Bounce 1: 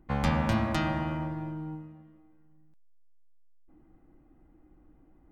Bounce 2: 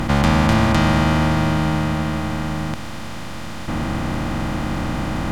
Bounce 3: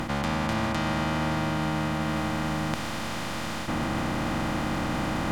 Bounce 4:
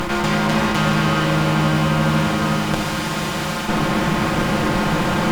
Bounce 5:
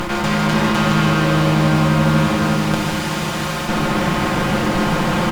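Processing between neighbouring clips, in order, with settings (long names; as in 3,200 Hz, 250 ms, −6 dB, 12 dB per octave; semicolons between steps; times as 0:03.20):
compressor on every frequency bin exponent 0.2; level +7 dB
low-shelf EQ 150 Hz −8.5 dB; reversed playback; downward compressor 6 to 1, threshold −26 dBFS, peak gain reduction 11.5 dB; reversed playback; level +1.5 dB
lower of the sound and its delayed copy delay 5.6 ms; in parallel at −11.5 dB: bit reduction 7 bits; on the sum: convolution reverb RT60 2.2 s, pre-delay 6 ms, DRR 4 dB; level +7 dB
single-tap delay 154 ms −6 dB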